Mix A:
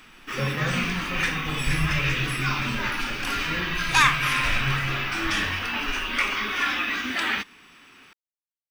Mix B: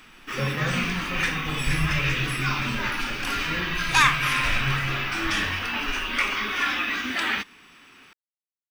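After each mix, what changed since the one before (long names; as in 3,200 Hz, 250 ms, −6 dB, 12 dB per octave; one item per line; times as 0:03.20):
nothing changed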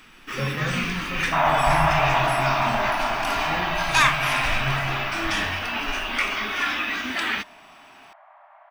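second sound: unmuted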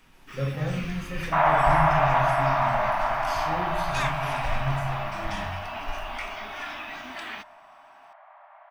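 first sound −12.0 dB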